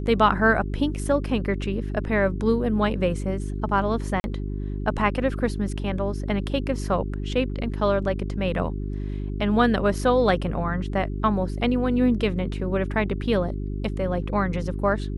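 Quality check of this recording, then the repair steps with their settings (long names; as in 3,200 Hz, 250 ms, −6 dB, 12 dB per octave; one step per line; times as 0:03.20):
mains hum 50 Hz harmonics 8 −29 dBFS
0:04.20–0:04.24: drop-out 41 ms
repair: hum removal 50 Hz, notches 8
repair the gap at 0:04.20, 41 ms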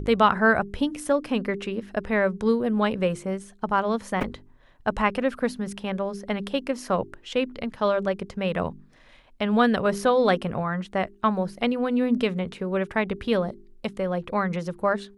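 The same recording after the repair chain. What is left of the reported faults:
none of them is left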